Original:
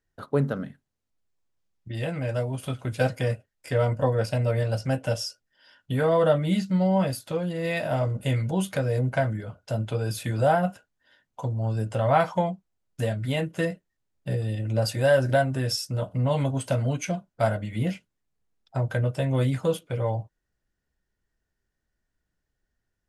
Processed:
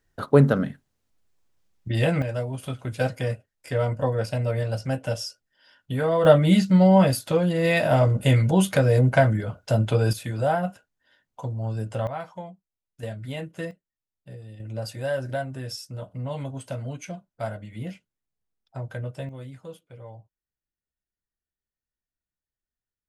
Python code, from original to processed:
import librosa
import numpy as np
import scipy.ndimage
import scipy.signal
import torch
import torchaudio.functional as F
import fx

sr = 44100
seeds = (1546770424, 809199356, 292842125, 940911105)

y = fx.gain(x, sr, db=fx.steps((0.0, 8.0), (2.22, -1.0), (6.25, 6.5), (10.13, -2.0), (12.07, -13.0), (13.03, -6.5), (13.71, -14.0), (14.6, -7.5), (19.29, -16.0)))